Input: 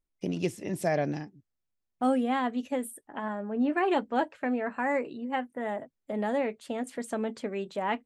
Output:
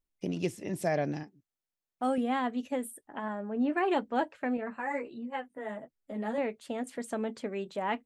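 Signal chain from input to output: 1.23–2.18 s: bass shelf 180 Hz -11 dB; 4.57–6.38 s: three-phase chorus; trim -2 dB

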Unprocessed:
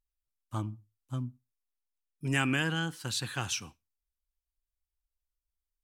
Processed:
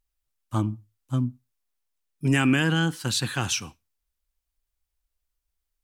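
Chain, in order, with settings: dynamic bell 240 Hz, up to +5 dB, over -42 dBFS, Q 0.88; in parallel at -0.5 dB: peak limiter -21.5 dBFS, peak gain reduction 9.5 dB; on the sum: trim +1.5 dB

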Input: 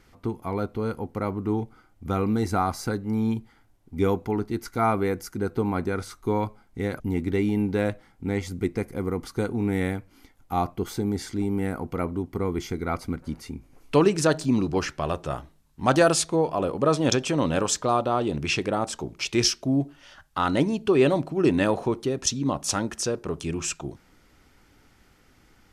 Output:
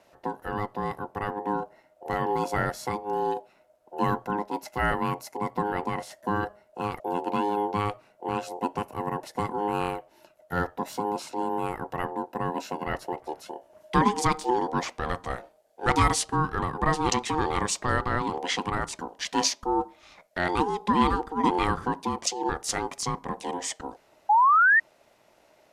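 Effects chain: ring modulator 620 Hz; painted sound rise, 24.29–24.80 s, 810–1900 Hz -18 dBFS

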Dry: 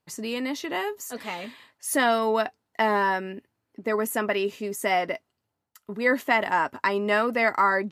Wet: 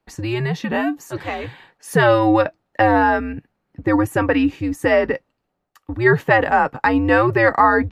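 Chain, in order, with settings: FFT filter 110 Hz 0 dB, 370 Hz +9 dB, 2.2 kHz +5 dB, 10 kHz -7 dB; frequency shift -120 Hz; trim +1 dB

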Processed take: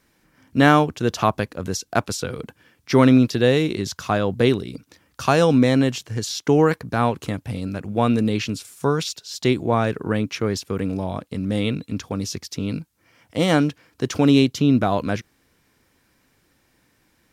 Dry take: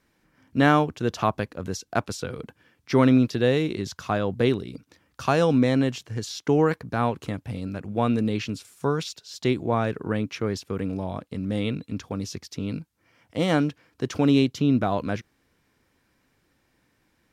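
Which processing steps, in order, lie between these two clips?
treble shelf 5.1 kHz +6 dB; trim +4 dB

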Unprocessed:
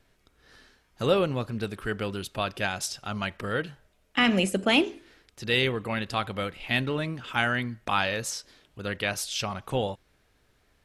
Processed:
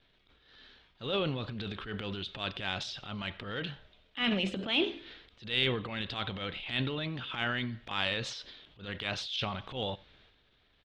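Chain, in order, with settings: four-pole ladder low-pass 3.9 kHz, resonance 65%; in parallel at +1 dB: compression, threshold -42 dBFS, peak gain reduction 18 dB; on the sum: transient shaper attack -11 dB, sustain +8 dB; delay 93 ms -23.5 dB

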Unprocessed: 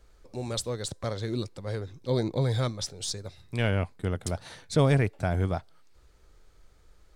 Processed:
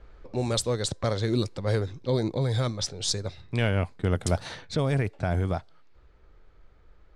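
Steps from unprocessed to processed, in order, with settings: peak limiter -19.5 dBFS, peak gain reduction 8 dB; gain riding within 4 dB 0.5 s; level-controlled noise filter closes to 2.4 kHz, open at -25 dBFS; trim +4.5 dB

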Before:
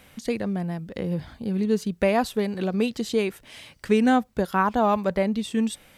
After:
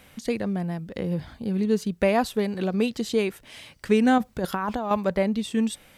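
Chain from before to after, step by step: 4.18–4.91 s: compressor with a negative ratio -27 dBFS, ratio -1

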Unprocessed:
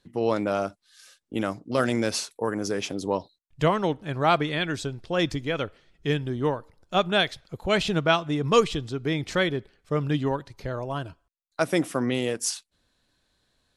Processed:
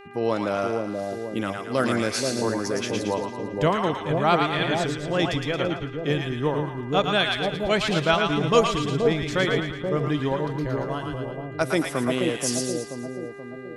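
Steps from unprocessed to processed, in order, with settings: mains buzz 400 Hz, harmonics 7, -46 dBFS -4 dB/octave; two-band feedback delay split 770 Hz, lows 480 ms, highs 112 ms, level -3 dB

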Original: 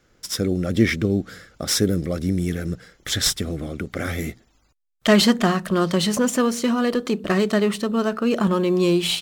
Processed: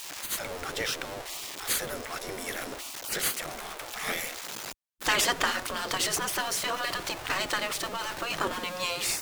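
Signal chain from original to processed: jump at every zero crossing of -28.5 dBFS; spectral gate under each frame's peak -15 dB weak

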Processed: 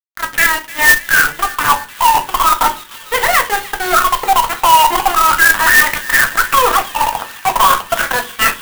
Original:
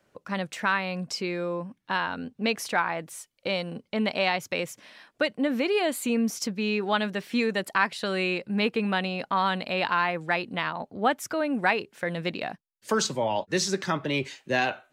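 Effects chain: high-pass 310 Hz 12 dB/octave; slow attack 275 ms; wah-wah 0.22 Hz 530–1100 Hz, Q 12; fuzz box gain 59 dB, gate -56 dBFS; Butterworth band-stop 3.7 kHz, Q 0.83; feedback echo behind a high-pass 521 ms, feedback 73%, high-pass 2.3 kHz, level -6.5 dB; simulated room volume 44 m³, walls mixed, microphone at 0.39 m; speed mistake 45 rpm record played at 78 rpm; loudness maximiser +5 dB; sampling jitter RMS 0.04 ms

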